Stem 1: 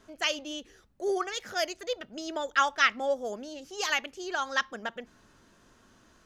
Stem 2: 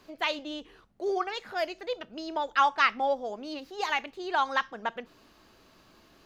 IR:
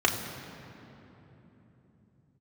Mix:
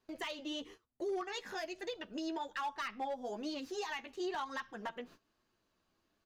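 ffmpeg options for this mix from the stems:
-filter_complex "[0:a]alimiter=limit=0.0944:level=0:latency=1:release=455,volume=0.631[s0];[1:a]acrossover=split=190[s1][s2];[s2]acompressor=threshold=0.0178:ratio=2[s3];[s1][s3]amix=inputs=2:normalize=0,flanger=delay=8:depth=4.4:regen=10:speed=1.1:shape=sinusoidal,asoftclip=type=hard:threshold=0.0316,adelay=1.3,volume=1.33,asplit=2[s4][s5];[s5]apad=whole_len=275990[s6];[s0][s6]sidechaincompress=threshold=0.0126:ratio=8:attack=16:release=390[s7];[s7][s4]amix=inputs=2:normalize=0,agate=range=0.0891:threshold=0.00251:ratio=16:detection=peak,alimiter=level_in=2.24:limit=0.0631:level=0:latency=1:release=336,volume=0.447"

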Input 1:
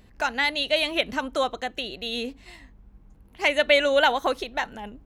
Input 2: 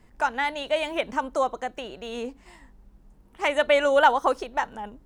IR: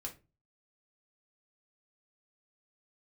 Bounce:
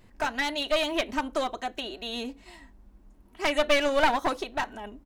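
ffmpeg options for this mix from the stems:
-filter_complex "[0:a]volume=0.473,asplit=2[s0][s1];[s1]volume=0.376[s2];[1:a]adelay=3.5,volume=0.75[s3];[2:a]atrim=start_sample=2205[s4];[s2][s4]afir=irnorm=-1:irlink=0[s5];[s0][s3][s5]amix=inputs=3:normalize=0,aeval=exprs='clip(val(0),-1,0.0447)':c=same"

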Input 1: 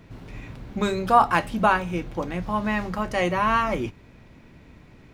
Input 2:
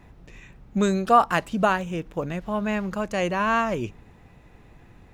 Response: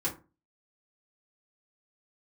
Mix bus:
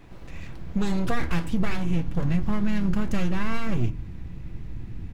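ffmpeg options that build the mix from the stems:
-filter_complex "[0:a]aeval=exprs='abs(val(0))':c=same,volume=0.562,asplit=2[s0][s1];[s1]volume=0.335[s2];[1:a]acompressor=threshold=0.0631:ratio=6,adelay=0.5,volume=0.841,asplit=2[s3][s4];[s4]apad=whole_len=226580[s5];[s0][s5]sidechaincompress=threshold=0.0316:ratio=8:attack=16:release=159[s6];[2:a]atrim=start_sample=2205[s7];[s2][s7]afir=irnorm=-1:irlink=0[s8];[s6][s3][s8]amix=inputs=3:normalize=0,asubboost=boost=8:cutoff=210,acompressor=threshold=0.141:ratio=5"

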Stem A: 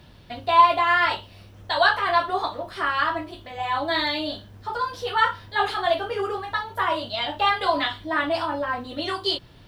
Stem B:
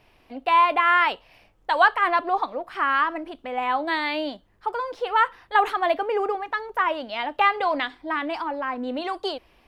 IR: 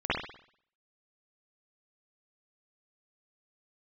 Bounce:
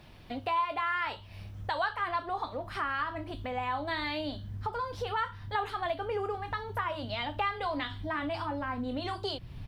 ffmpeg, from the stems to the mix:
-filter_complex "[0:a]asubboost=boost=7:cutoff=190,bandreject=f=2700:w=26,volume=0.531[s0];[1:a]adelay=0.3,volume=0.944[s1];[s0][s1]amix=inputs=2:normalize=0,acompressor=threshold=0.0178:ratio=2.5"

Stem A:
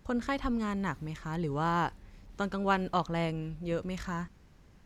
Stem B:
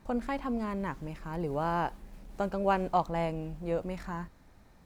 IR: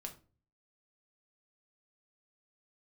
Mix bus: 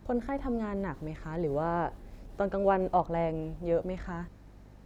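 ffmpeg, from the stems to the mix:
-filter_complex "[0:a]acrossover=split=340[s0][s1];[s1]acompressor=threshold=0.0224:ratio=6[s2];[s0][s2]amix=inputs=2:normalize=0,aeval=exprs='val(0)+0.00355*(sin(2*PI*50*n/s)+sin(2*PI*2*50*n/s)/2+sin(2*PI*3*50*n/s)/3+sin(2*PI*4*50*n/s)/4+sin(2*PI*5*50*n/s)/5)':c=same,volume=0.708[s3];[1:a]equalizer=f=360:t=o:w=2.5:g=10,volume=0.631[s4];[s3][s4]amix=inputs=2:normalize=0,acrossover=split=2500[s5][s6];[s6]acompressor=threshold=0.001:ratio=4:attack=1:release=60[s7];[s5][s7]amix=inputs=2:normalize=0"

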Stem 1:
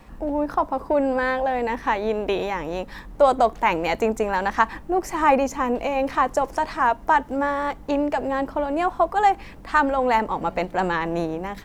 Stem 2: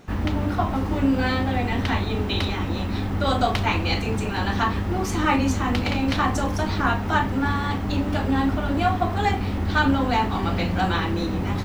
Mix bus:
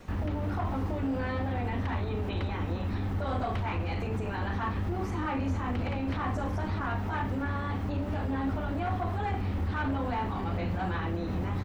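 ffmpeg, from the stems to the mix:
-filter_complex "[0:a]acompressor=threshold=0.0501:ratio=6,volume=0.501[s0];[1:a]equalizer=f=86:w=2.9:g=5.5,asoftclip=type=hard:threshold=0.141,adelay=3.1,volume=0.708[s1];[s0][s1]amix=inputs=2:normalize=0,acrossover=split=2600[s2][s3];[s3]acompressor=threshold=0.00282:ratio=4:attack=1:release=60[s4];[s2][s4]amix=inputs=2:normalize=0,alimiter=level_in=1.06:limit=0.0631:level=0:latency=1:release=201,volume=0.944"

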